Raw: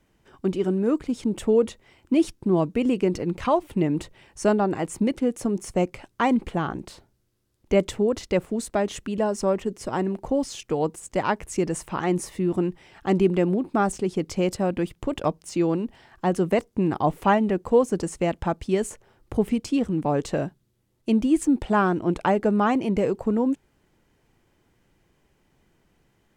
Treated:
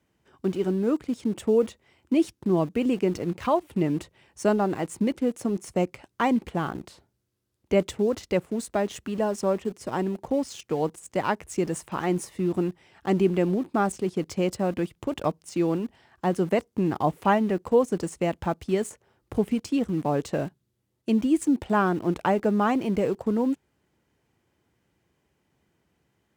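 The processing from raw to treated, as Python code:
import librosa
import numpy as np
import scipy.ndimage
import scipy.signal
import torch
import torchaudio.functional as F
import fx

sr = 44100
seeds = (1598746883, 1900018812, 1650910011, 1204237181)

p1 = scipy.signal.sosfilt(scipy.signal.butter(4, 56.0, 'highpass', fs=sr, output='sos'), x)
p2 = np.where(np.abs(p1) >= 10.0 ** (-32.5 / 20.0), p1, 0.0)
p3 = p1 + F.gain(torch.from_numpy(p2), -5.5).numpy()
y = F.gain(torch.from_numpy(p3), -5.5).numpy()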